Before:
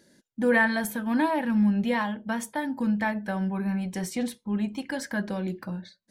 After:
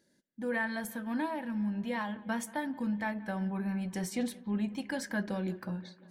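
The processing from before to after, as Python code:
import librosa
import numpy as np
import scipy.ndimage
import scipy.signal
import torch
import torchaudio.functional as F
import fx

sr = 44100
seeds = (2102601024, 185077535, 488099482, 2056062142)

p1 = fx.rider(x, sr, range_db=4, speed_s=0.5)
p2 = p1 + fx.echo_bbd(p1, sr, ms=178, stages=4096, feedback_pct=70, wet_db=-21, dry=0)
y = F.gain(torch.from_numpy(p2), -7.5).numpy()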